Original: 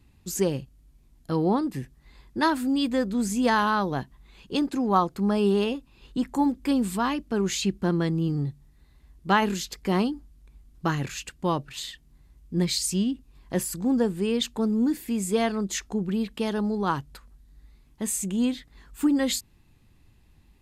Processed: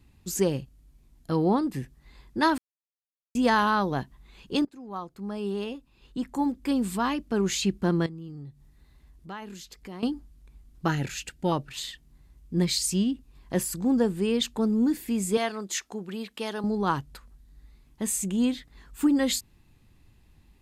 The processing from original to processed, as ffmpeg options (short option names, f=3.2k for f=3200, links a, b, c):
-filter_complex "[0:a]asettb=1/sr,asplit=3[a][b][c];[a]atrim=end=8.064[d];[b]atrim=start=8.06:end=10.03,asetpts=PTS-STARTPTS,afade=t=in:d=0.004:c=qsin,afade=t=out:st=1.966:d=0.004:c=qsin,acompressor=threshold=-50dB:ratio=2:attack=3.2:release=140:knee=1:detection=peak[e];[c]atrim=start=10.026[f];[d][e]acrossfade=d=0.004:c1=hsin:c2=qsin[g];[g][f]acrossfade=d=0.004:c1=qsin:c2=hsin,asettb=1/sr,asplit=3[h][i][j];[h]atrim=end=10.884[k];[i]atrim=start=10.88:end=11.52,asetpts=PTS-STARTPTS,afade=t=in:d=0.004:c=qsin,afade=t=out:st=0.636:d=0.004:c=qsin,asuperstop=centerf=1100:order=8:qfactor=4.4[l];[j]atrim=start=11.516[m];[k][l]acrossfade=d=0.004:c1=hsin:c2=qsin[n];[n][m]acrossfade=d=0.004:c1=qsin:c2=hsin,asettb=1/sr,asplit=3[o][p][q];[o]atrim=end=15.374[r];[p]atrim=start=15.37:end=16.64,asetpts=PTS-STARTPTS,afade=t=in:d=0.004:c=qsin,afade=t=out:st=1.266:d=0.004:c=qsin,highpass=f=600:p=1[s];[q]atrim=start=16.636[t];[r][s]acrossfade=d=0.004:c1=hsin:c2=qsin[u];[u][t]acrossfade=d=0.004:c1=qsin:c2=hsin,asplit=4[v][w][x][y];[v]atrim=end=2.58,asetpts=PTS-STARTPTS,afade=t=out:st=2.576:d=0.004:c=hsin[z];[w]atrim=start=2.58:end=3.35,asetpts=PTS-STARTPTS,volume=0[aa];[x]atrim=start=3.35:end=4.65,asetpts=PTS-STARTPTS,afade=t=in:d=0.004:c=hsin,afade=t=out:st=1.296:d=0.004:c=hsin:silence=0.0794328[ab];[y]atrim=start=4.65,asetpts=PTS-STARTPTS,afade=t=in:d=2.73:silence=0.0794328[ac];[z][aa][ab][ac]concat=n=4:v=0:a=1"